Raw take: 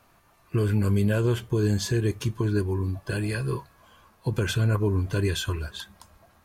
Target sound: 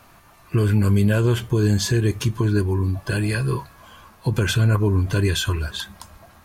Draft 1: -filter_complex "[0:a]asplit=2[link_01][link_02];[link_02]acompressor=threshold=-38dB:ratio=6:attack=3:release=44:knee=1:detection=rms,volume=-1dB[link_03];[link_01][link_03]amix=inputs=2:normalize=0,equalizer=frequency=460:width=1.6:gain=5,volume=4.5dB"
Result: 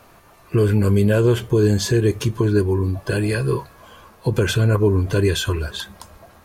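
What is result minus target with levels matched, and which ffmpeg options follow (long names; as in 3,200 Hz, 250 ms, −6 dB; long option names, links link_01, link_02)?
500 Hz band +5.0 dB
-filter_complex "[0:a]asplit=2[link_01][link_02];[link_02]acompressor=threshold=-38dB:ratio=6:attack=3:release=44:knee=1:detection=rms,volume=-1dB[link_03];[link_01][link_03]amix=inputs=2:normalize=0,equalizer=frequency=460:width=1.6:gain=-3,volume=4.5dB"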